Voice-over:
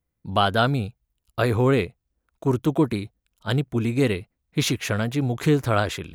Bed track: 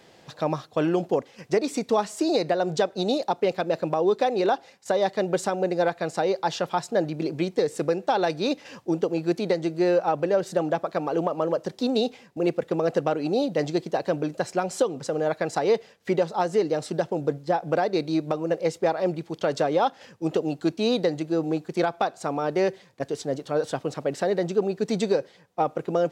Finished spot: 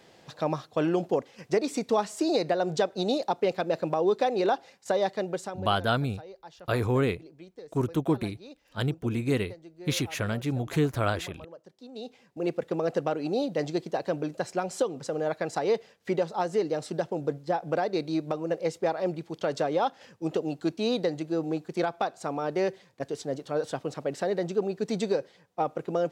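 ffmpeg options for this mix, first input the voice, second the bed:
-filter_complex "[0:a]adelay=5300,volume=-5.5dB[a];[1:a]volume=15.5dB,afade=t=out:st=4.96:d=0.79:silence=0.105925,afade=t=in:st=11.91:d=0.66:silence=0.125893[b];[a][b]amix=inputs=2:normalize=0"

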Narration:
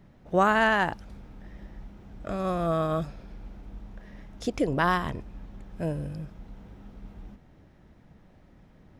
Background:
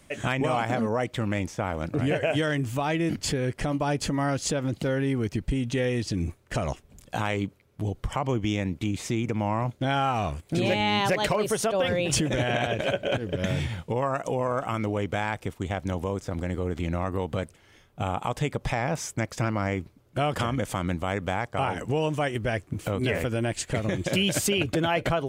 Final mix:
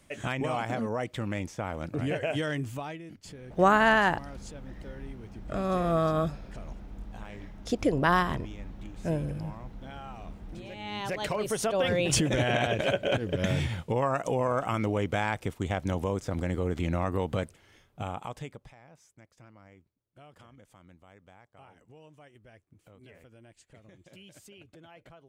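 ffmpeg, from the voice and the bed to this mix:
-filter_complex "[0:a]adelay=3250,volume=0.5dB[a];[1:a]volume=13.5dB,afade=t=out:st=2.62:d=0.4:silence=0.199526,afade=t=in:st=10.73:d=1.28:silence=0.11885,afade=t=out:st=17.33:d=1.4:silence=0.0446684[b];[a][b]amix=inputs=2:normalize=0"

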